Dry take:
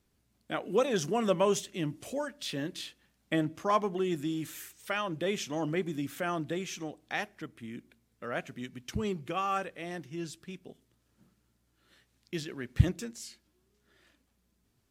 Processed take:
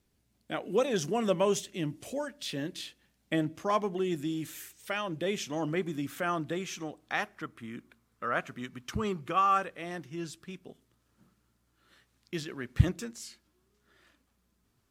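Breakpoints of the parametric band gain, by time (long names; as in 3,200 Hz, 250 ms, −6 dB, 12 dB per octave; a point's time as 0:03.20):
parametric band 1,200 Hz 0.76 octaves
0:05.32 −2.5 dB
0:05.84 +4.5 dB
0:06.87 +4.5 dB
0:07.43 +11.5 dB
0:09.12 +11.5 dB
0:09.75 +5 dB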